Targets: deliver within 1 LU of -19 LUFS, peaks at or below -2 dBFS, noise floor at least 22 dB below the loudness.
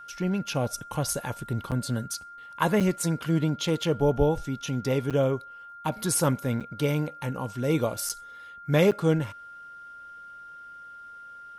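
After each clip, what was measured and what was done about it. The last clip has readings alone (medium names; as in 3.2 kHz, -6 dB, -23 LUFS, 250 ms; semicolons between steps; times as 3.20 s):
dropouts 6; longest dropout 7.3 ms; steady tone 1.4 kHz; tone level -42 dBFS; loudness -27.5 LUFS; peak level -9.5 dBFS; loudness target -19.0 LUFS
-> interpolate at 1.71/2.80/5.10/6.60/8.09/8.91 s, 7.3 ms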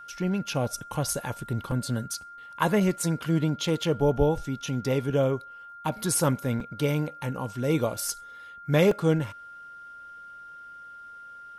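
dropouts 0; steady tone 1.4 kHz; tone level -42 dBFS
-> band-stop 1.4 kHz, Q 30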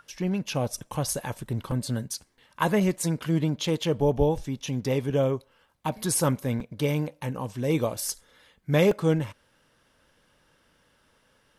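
steady tone not found; loudness -27.5 LUFS; peak level -9.5 dBFS; loudness target -19.0 LUFS
-> trim +8.5 dB; peak limiter -2 dBFS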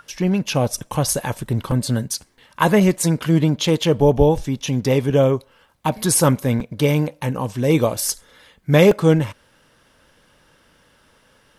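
loudness -19.0 LUFS; peak level -2.0 dBFS; noise floor -57 dBFS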